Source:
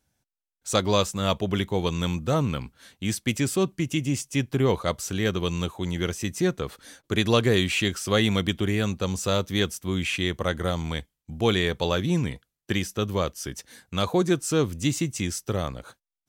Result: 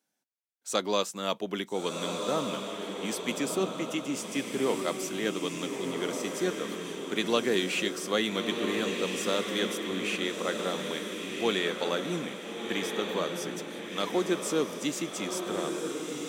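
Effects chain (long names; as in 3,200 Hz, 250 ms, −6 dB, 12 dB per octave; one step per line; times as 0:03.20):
high-pass filter 220 Hz 24 dB per octave
on a send: feedback delay with all-pass diffusion 1,362 ms, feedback 47%, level −4 dB
on the sum: level −5 dB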